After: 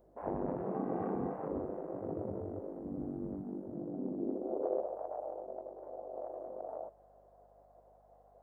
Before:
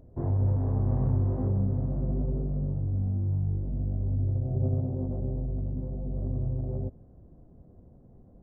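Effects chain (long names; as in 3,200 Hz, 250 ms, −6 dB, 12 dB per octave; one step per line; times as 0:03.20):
harmonic generator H 4 −15 dB, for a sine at −15 dBFS
0:00.74–0:01.36: comb filter 2.6 ms, depth 52%
gate on every frequency bin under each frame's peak −15 dB weak
high-pass filter sweep 90 Hz → 660 Hz, 0:03.43–0:04.98
mains hum 50 Hz, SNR 31 dB
level +1.5 dB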